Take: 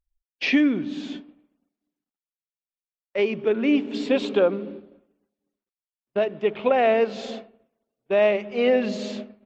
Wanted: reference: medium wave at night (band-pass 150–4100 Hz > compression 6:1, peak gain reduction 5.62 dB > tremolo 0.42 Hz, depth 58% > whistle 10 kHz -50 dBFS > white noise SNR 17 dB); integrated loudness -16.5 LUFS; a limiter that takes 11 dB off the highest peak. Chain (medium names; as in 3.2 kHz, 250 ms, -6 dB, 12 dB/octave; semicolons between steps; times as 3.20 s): peak limiter -18.5 dBFS; band-pass 150–4100 Hz; compression 6:1, threshold -27 dBFS; tremolo 0.42 Hz, depth 58%; whistle 10 kHz -50 dBFS; white noise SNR 17 dB; trim +19.5 dB